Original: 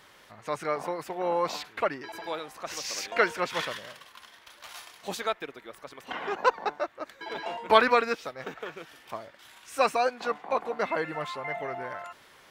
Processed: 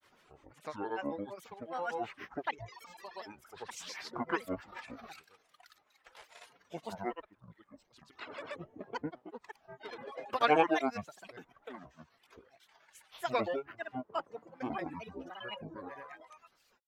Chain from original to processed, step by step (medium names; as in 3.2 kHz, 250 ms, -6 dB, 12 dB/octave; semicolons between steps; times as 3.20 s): reverb removal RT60 1.5 s; granulator, grains 20 per s, pitch spread up and down by 12 st; speed mistake 45 rpm record played at 33 rpm; trim -7 dB